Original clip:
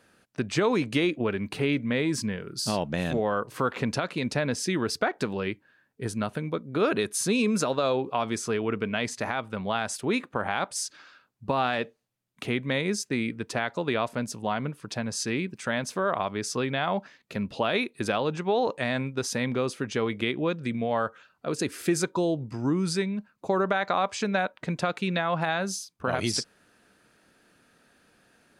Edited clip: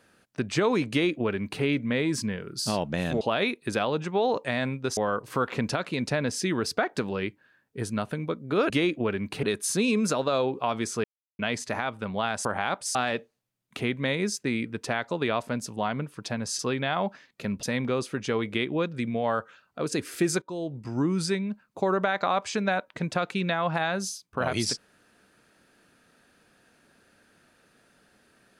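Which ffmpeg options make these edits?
ffmpeg -i in.wav -filter_complex "[0:a]asplit=12[link_01][link_02][link_03][link_04][link_05][link_06][link_07][link_08][link_09][link_10][link_11][link_12];[link_01]atrim=end=3.212[link_13];[link_02]atrim=start=17.538:end=19.302[link_14];[link_03]atrim=start=3.208:end=6.942[link_15];[link_04]atrim=start=0.898:end=1.632[link_16];[link_05]atrim=start=6.938:end=8.55,asetpts=PTS-STARTPTS,afade=type=out:start_time=1.608:duration=0.004:curve=hsin[link_17];[link_06]atrim=start=8.55:end=8.9,asetpts=PTS-STARTPTS,volume=0[link_18];[link_07]atrim=start=8.9:end=9.962,asetpts=PTS-STARTPTS,afade=type=in:duration=0.004:curve=hsin[link_19];[link_08]atrim=start=10.348:end=10.852[link_20];[link_09]atrim=start=11.608:end=15.252[link_21];[link_10]atrim=start=16.498:end=17.542[link_22];[link_11]atrim=start=19.298:end=22.09,asetpts=PTS-STARTPTS,afade=type=out:start_time=2.788:duration=0.004:curve=hsin:silence=0.16788[link_23];[link_12]atrim=start=22.09,asetpts=PTS-STARTPTS,afade=type=in:duration=0.53:silence=0.16788[link_24];[link_13][link_14]acrossfade=duration=0.004:curve1=hsin:curve2=hsin[link_25];[link_25][link_15]acrossfade=duration=0.004:curve1=hsin:curve2=hsin[link_26];[link_26][link_16]acrossfade=duration=0.004:curve1=hsin:curve2=hsin[link_27];[link_17][link_18][link_19]concat=n=3:v=0:a=1[link_28];[link_27][link_28]acrossfade=duration=0.004:curve1=hsin:curve2=hsin[link_29];[link_29][link_20]acrossfade=duration=0.004:curve1=hsin:curve2=hsin[link_30];[link_30][link_21]acrossfade=duration=0.004:curve1=hsin:curve2=hsin[link_31];[link_31][link_22]acrossfade=duration=0.004:curve1=hsin:curve2=hsin[link_32];[link_23][link_24]concat=n=2:v=0:a=1[link_33];[link_32][link_33]acrossfade=duration=0.004:curve1=hsin:curve2=hsin" out.wav

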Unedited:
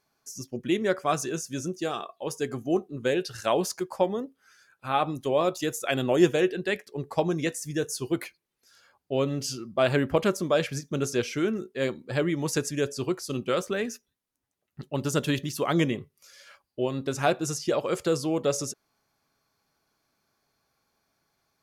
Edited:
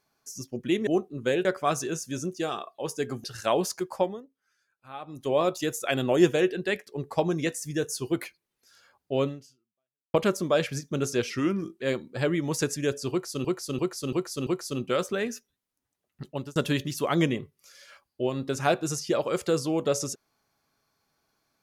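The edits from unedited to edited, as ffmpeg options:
ffmpeg -i in.wav -filter_complex "[0:a]asplit=14[link_01][link_02][link_03][link_04][link_05][link_06][link_07][link_08][link_09][link_10][link_11][link_12][link_13][link_14];[link_01]atrim=end=0.872[link_15];[link_02]atrim=start=2.658:end=3.242[link_16];[link_03]atrim=start=0.868:end=2.662[link_17];[link_04]atrim=start=3.238:end=4.22,asetpts=PTS-STARTPTS,afade=type=out:start_time=0.742:duration=0.24:silence=0.177828[link_18];[link_05]atrim=start=4.22:end=5.07,asetpts=PTS-STARTPTS,volume=-15dB[link_19];[link_06]atrim=start=5.07:end=10.14,asetpts=PTS-STARTPTS,afade=type=in:duration=0.24:silence=0.177828,afade=type=out:start_time=4.19:duration=0.88:curve=exp[link_20];[link_07]atrim=start=10.14:end=11.304,asetpts=PTS-STARTPTS,afade=type=in:duration=0.004:curve=hsin[link_21];[link_08]atrim=start=11.3:end=11.76,asetpts=PTS-STARTPTS,asetrate=39249,aresample=44100,atrim=end_sample=22793,asetpts=PTS-STARTPTS[link_22];[link_09]atrim=start=11.756:end=13.392[link_23];[link_10]atrim=start=13.048:end=13.392[link_24];[link_11]atrim=start=13.048:end=13.392[link_25];[link_12]atrim=start=13.048:end=13.392[link_26];[link_13]atrim=start=13.048:end=15.14,asetpts=PTS-STARTPTS,afade=type=out:start_time=1.822:duration=0.27[link_27];[link_14]atrim=start=15.14,asetpts=PTS-STARTPTS,afade=type=in:duration=0.004:curve=hsin[link_28];[link_15][link_16]acrossfade=duration=0.004:curve1=hsin:curve2=hsin[link_29];[link_29][link_17]acrossfade=duration=0.004:curve1=hsin:curve2=hsin[link_30];[link_18][link_19][link_20][link_21]concat=n=4:v=0:a=1[link_31];[link_30][link_31]acrossfade=duration=0.004:curve1=hsin:curve2=hsin[link_32];[link_32][link_22]acrossfade=duration=0.004:curve1=hsin:curve2=hsin[link_33];[link_33][link_23]acrossfade=duration=0.004:curve1=hsin:curve2=hsin[link_34];[link_34][link_24]acrossfade=duration=0.004:curve1=hsin:curve2=hsin[link_35];[link_35][link_25]acrossfade=duration=0.004:curve1=hsin:curve2=hsin[link_36];[link_36][link_26]acrossfade=duration=0.004:curve1=hsin:curve2=hsin[link_37];[link_27][link_28]concat=n=2:v=0:a=1[link_38];[link_37][link_38]acrossfade=duration=0.004:curve1=hsin:curve2=hsin" out.wav

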